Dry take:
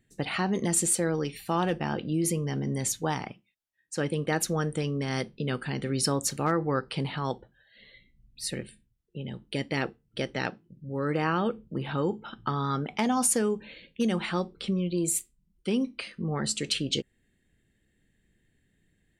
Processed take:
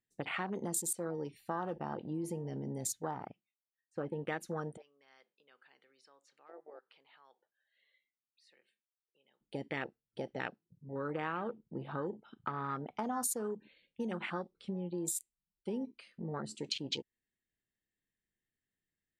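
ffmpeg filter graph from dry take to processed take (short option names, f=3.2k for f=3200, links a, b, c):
-filter_complex "[0:a]asettb=1/sr,asplit=3[a][b][c];[a]atrim=end=3.114[d];[b]atrim=start=3.11:end=4.23,asetpts=PTS-STARTPTS,afade=t=in:d=0.004:c=qsin,afade=t=out:st=1.116:d=0.004:c=qsin,bandreject=f=1.1k:w=6.9,acrossover=split=2900[e][f];[f]acompressor=threshold=-58dB:ratio=4:attack=1:release=60[g];[e][g]amix=inputs=2:normalize=0[h];[c]atrim=start=4.226[i];[d][h]acrossfade=d=0.004:c1=hsin:c2=qsin[j];[j][i]acrossfade=d=0.004:c1=qsin:c2=hsin,asettb=1/sr,asplit=3[k][l][m];[k]atrim=end=4.774[n];[l]atrim=start=4.77:end=9.41,asetpts=PTS-STARTPTS,afade=t=in:d=0.004:c=qsin,afade=t=out:st=4.636:d=0.004:c=qsin,acompressor=threshold=-42dB:ratio=2:attack=3.2:release=140:knee=1:detection=peak,highpass=530,lowpass=3.5k[o];[m]atrim=start=9.406[p];[n][o]acrossfade=d=0.004:c1=hsin:c2=qsin[q];[q][p]acrossfade=d=0.004:c1=qsin:c2=hsin,afwtdn=0.0224,lowshelf=f=350:g=-9.5,acompressor=threshold=-33dB:ratio=2.5,volume=-2dB"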